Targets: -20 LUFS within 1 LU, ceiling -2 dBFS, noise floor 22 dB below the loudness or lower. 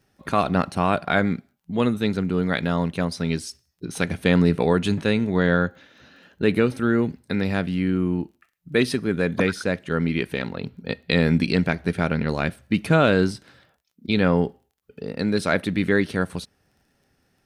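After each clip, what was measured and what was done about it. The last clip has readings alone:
tick rate 22 per s; loudness -23.0 LUFS; peak level -4.0 dBFS; loudness target -20.0 LUFS
-> de-click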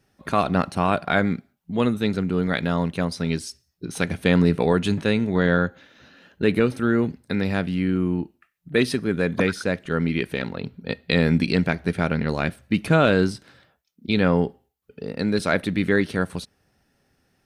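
tick rate 0 per s; loudness -23.0 LUFS; peak level -4.0 dBFS; loudness target -20.0 LUFS
-> trim +3 dB; peak limiter -2 dBFS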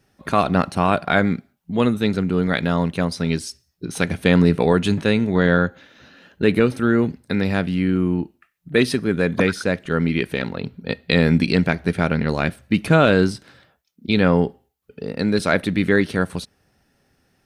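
loudness -20.0 LUFS; peak level -2.0 dBFS; noise floor -67 dBFS

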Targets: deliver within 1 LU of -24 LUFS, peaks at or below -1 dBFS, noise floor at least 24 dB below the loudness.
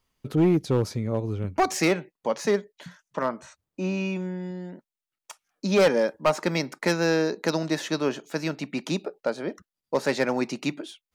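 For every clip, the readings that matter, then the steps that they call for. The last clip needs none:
clipped samples 0.8%; clipping level -14.5 dBFS; loudness -26.5 LUFS; peak level -14.5 dBFS; loudness target -24.0 LUFS
-> clip repair -14.5 dBFS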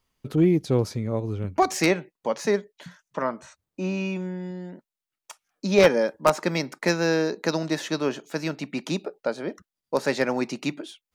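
clipped samples 0.0%; loudness -25.5 LUFS; peak level -5.5 dBFS; loudness target -24.0 LUFS
-> trim +1.5 dB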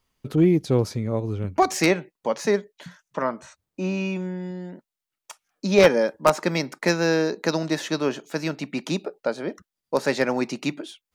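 loudness -24.0 LUFS; peak level -4.0 dBFS; noise floor -87 dBFS

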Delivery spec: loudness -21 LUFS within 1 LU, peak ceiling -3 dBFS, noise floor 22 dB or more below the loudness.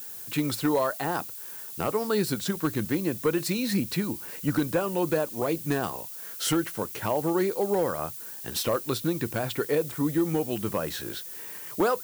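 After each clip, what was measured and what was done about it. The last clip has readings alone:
clipped samples 0.3%; clipping level -17.0 dBFS; noise floor -40 dBFS; noise floor target -51 dBFS; loudness -28.5 LUFS; peak level -17.0 dBFS; loudness target -21.0 LUFS
-> clip repair -17 dBFS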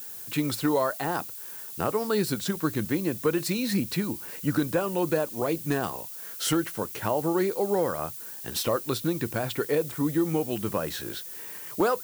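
clipped samples 0.0%; noise floor -40 dBFS; noise floor target -50 dBFS
-> noise print and reduce 10 dB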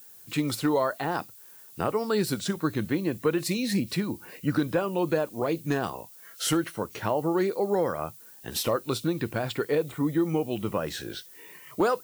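noise floor -50 dBFS; noise floor target -51 dBFS
-> noise print and reduce 6 dB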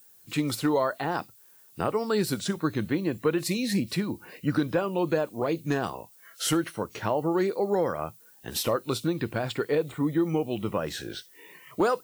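noise floor -56 dBFS; loudness -28.5 LUFS; peak level -12.5 dBFS; loudness target -21.0 LUFS
-> trim +7.5 dB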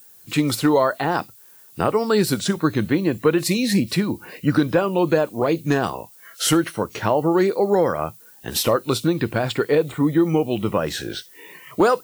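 loudness -21.0 LUFS; peak level -5.0 dBFS; noise floor -48 dBFS

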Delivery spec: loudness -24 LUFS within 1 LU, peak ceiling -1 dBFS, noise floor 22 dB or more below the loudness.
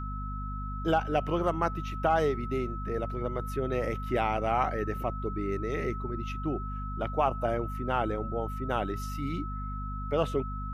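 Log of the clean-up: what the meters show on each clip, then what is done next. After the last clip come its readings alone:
hum 50 Hz; highest harmonic 250 Hz; hum level -34 dBFS; steady tone 1.3 kHz; tone level -39 dBFS; loudness -31.5 LUFS; peak level -13.0 dBFS; loudness target -24.0 LUFS
-> de-hum 50 Hz, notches 5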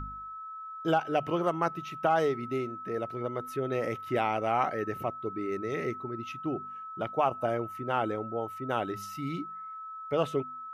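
hum not found; steady tone 1.3 kHz; tone level -39 dBFS
-> band-stop 1.3 kHz, Q 30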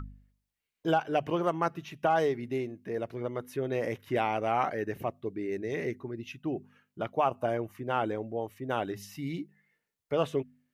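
steady tone not found; loudness -32.5 LUFS; peak level -14.5 dBFS; loudness target -24.0 LUFS
-> trim +8.5 dB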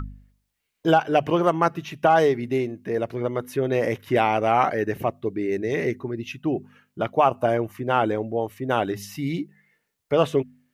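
loudness -24.0 LUFS; peak level -6.0 dBFS; noise floor -77 dBFS

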